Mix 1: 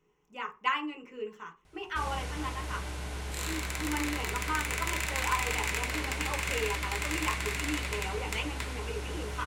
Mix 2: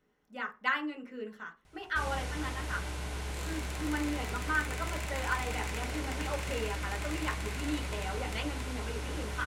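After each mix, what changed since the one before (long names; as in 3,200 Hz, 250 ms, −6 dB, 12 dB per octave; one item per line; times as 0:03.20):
speech: remove EQ curve with evenly spaced ripples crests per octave 0.73, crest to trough 12 dB
second sound −10.0 dB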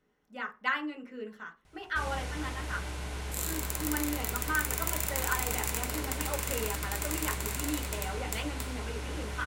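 second sound: remove resonant band-pass 2,200 Hz, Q 1.3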